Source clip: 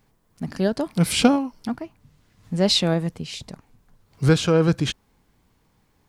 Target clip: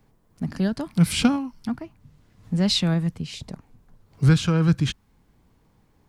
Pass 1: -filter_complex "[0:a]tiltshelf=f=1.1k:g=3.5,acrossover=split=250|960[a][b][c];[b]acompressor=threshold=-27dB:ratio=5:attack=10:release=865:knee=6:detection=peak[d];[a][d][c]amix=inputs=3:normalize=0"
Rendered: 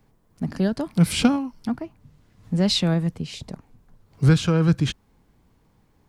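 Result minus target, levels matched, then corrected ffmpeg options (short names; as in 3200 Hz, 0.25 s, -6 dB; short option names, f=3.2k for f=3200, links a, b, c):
compressor: peak gain reduction -7 dB
-filter_complex "[0:a]tiltshelf=f=1.1k:g=3.5,acrossover=split=250|960[a][b][c];[b]acompressor=threshold=-36dB:ratio=5:attack=10:release=865:knee=6:detection=peak[d];[a][d][c]amix=inputs=3:normalize=0"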